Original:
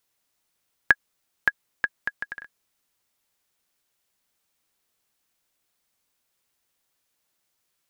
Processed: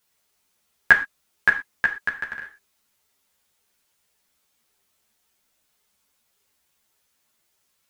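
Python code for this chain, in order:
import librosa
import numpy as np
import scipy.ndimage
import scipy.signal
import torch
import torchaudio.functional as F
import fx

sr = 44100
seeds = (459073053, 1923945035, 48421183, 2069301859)

y = fx.rev_gated(x, sr, seeds[0], gate_ms=140, shape='falling', drr_db=4.0)
y = fx.ensemble(y, sr)
y = y * 10.0 ** (7.0 / 20.0)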